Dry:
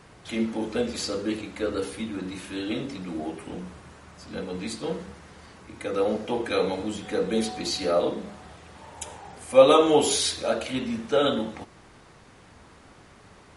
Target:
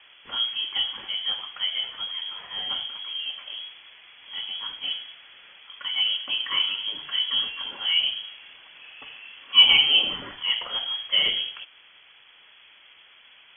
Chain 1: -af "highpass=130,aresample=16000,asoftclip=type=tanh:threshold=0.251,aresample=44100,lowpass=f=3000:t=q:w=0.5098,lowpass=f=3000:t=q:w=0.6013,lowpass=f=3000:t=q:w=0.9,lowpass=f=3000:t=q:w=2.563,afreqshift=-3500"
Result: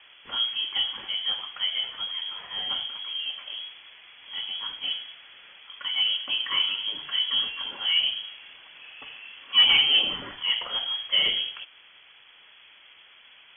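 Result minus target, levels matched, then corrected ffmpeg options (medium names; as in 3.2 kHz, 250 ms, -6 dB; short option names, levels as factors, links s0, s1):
saturation: distortion +18 dB
-af "highpass=130,aresample=16000,asoftclip=type=tanh:threshold=1,aresample=44100,lowpass=f=3000:t=q:w=0.5098,lowpass=f=3000:t=q:w=0.6013,lowpass=f=3000:t=q:w=0.9,lowpass=f=3000:t=q:w=2.563,afreqshift=-3500"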